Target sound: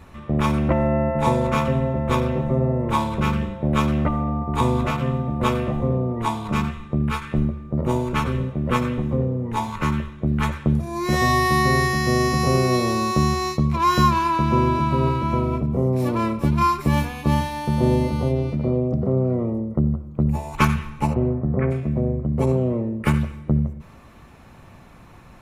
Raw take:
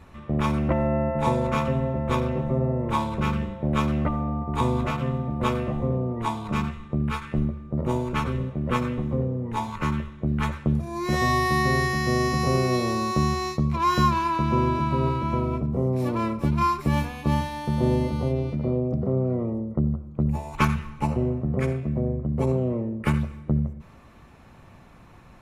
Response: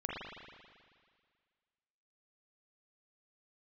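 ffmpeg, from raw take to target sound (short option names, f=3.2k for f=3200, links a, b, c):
-filter_complex "[0:a]asplit=3[a][b][c];[a]afade=t=out:st=21.13:d=0.02[d];[b]lowpass=f=2k:w=0.5412,lowpass=f=2k:w=1.3066,afade=t=in:st=21.13:d=0.02,afade=t=out:st=21.7:d=0.02[e];[c]afade=t=in:st=21.7:d=0.02[f];[d][e][f]amix=inputs=3:normalize=0,asplit=2[g][h];[h]aderivative[i];[1:a]atrim=start_sample=2205,afade=t=out:st=0.29:d=0.01,atrim=end_sample=13230[j];[i][j]afir=irnorm=-1:irlink=0,volume=-6dB[k];[g][k]amix=inputs=2:normalize=0,volume=3.5dB"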